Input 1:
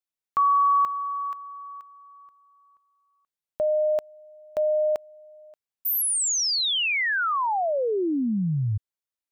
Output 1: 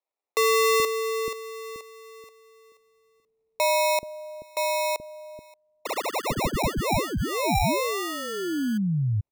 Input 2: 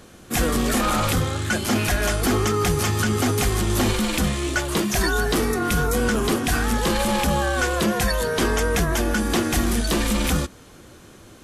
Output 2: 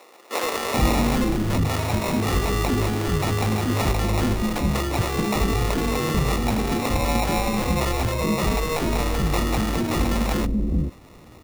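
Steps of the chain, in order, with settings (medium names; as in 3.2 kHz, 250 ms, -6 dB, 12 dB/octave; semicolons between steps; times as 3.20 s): sample-and-hold 28×; gain riding within 5 dB 2 s; bands offset in time highs, lows 430 ms, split 400 Hz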